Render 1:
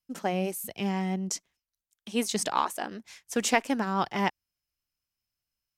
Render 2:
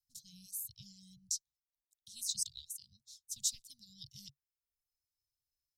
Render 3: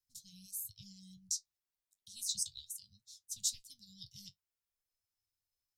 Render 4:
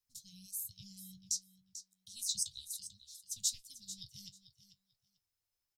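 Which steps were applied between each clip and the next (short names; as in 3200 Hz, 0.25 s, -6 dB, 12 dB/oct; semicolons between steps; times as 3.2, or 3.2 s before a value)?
reverb removal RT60 0.76 s; Chebyshev band-stop 140–3800 Hz, order 5; gain -2.5 dB
flange 0.35 Hz, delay 9.7 ms, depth 1.3 ms, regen +53%; gain +4 dB
feedback echo 0.442 s, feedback 16%, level -13 dB; gain +1 dB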